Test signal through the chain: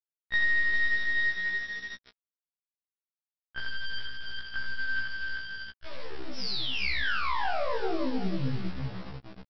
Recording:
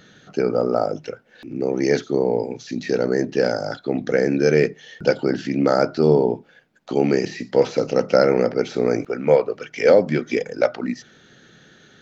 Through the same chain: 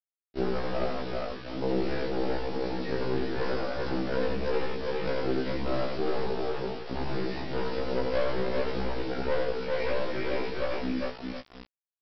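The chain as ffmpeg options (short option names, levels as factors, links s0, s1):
-filter_complex "[0:a]adynamicequalizer=threshold=0.02:dfrequency=260:dqfactor=2.8:tfrequency=260:tqfactor=2.8:attack=5:release=100:ratio=0.375:range=1.5:mode=cutabove:tftype=bell,flanger=delay=19:depth=5.2:speed=0.45,highpass=f=110:p=1,equalizer=f=3400:w=1.1:g=-6,bandreject=f=50:t=h:w=6,bandreject=f=100:t=h:w=6,bandreject=f=150:t=h:w=6,bandreject=f=200:t=h:w=6,bandreject=f=250:t=h:w=6,bandreject=f=300:t=h:w=6,bandreject=f=350:t=h:w=6,bandreject=f=400:t=h:w=6,bandreject=f=450:t=h:w=6,bandreject=f=500:t=h:w=6,aeval=exprs='(tanh(15.8*val(0)+0.75)-tanh(0.75))/15.8':c=same,asplit=2[s0][s1];[s1]aecho=0:1:55|58|86|161|403|716:0.188|0.15|0.668|0.112|0.596|0.211[s2];[s0][s2]amix=inputs=2:normalize=0,acompressor=threshold=0.0562:ratio=4,aresample=11025,acrusher=bits=6:mix=0:aa=0.000001,aresample=44100,acontrast=46,afftfilt=real='re*1.73*eq(mod(b,3),0)':imag='im*1.73*eq(mod(b,3),0)':win_size=2048:overlap=0.75,volume=0.668"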